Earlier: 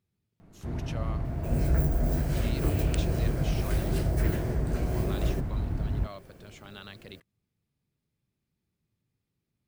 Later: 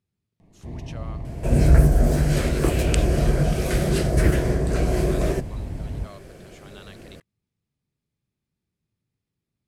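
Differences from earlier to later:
first sound: add Butterworth band-stop 1400 Hz, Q 2.2; second sound +12.0 dB; master: add Chebyshev low-pass 9600 Hz, order 2

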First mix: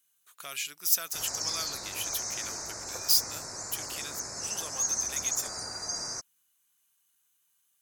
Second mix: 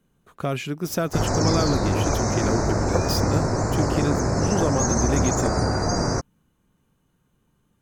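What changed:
speech: add tilt shelf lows +7.5 dB, about 700 Hz; master: remove pre-emphasis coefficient 0.97

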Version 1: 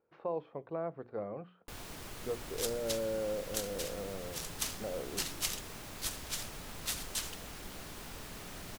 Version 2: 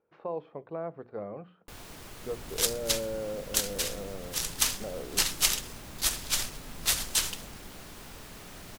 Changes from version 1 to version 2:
speech: send on; second sound +10.5 dB

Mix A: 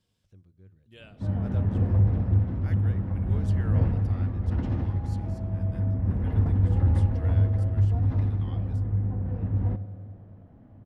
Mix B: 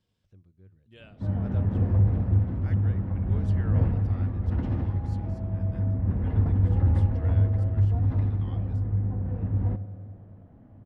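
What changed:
speech: send off; master: add high shelf 6600 Hz -11.5 dB

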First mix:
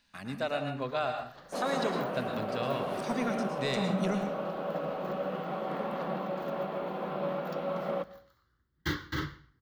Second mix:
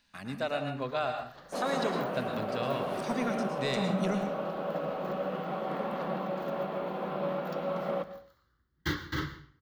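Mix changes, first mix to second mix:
first sound: send +8.0 dB; second sound: send +6.0 dB

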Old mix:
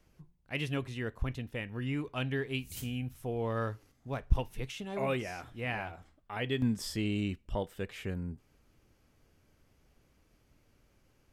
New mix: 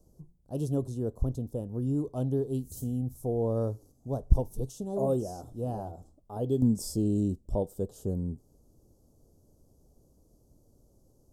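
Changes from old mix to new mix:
speech +6.0 dB; master: add Chebyshev band-stop 580–7300 Hz, order 2

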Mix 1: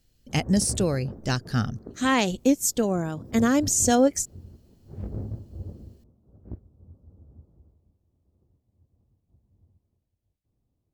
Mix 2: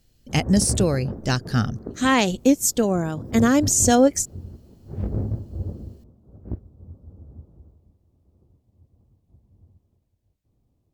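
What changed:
speech +3.5 dB; background +7.5 dB

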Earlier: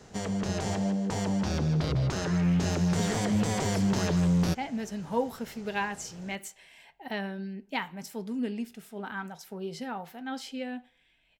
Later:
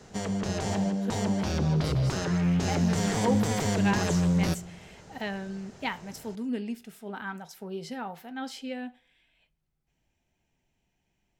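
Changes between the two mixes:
speech: entry -1.90 s; reverb: on, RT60 0.60 s

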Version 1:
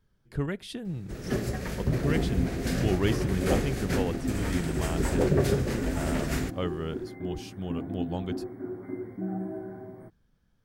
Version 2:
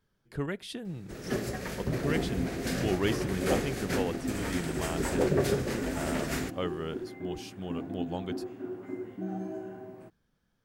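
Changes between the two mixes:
second sound: remove brick-wall FIR band-stop 2300–8300 Hz; master: add low shelf 140 Hz -10.5 dB

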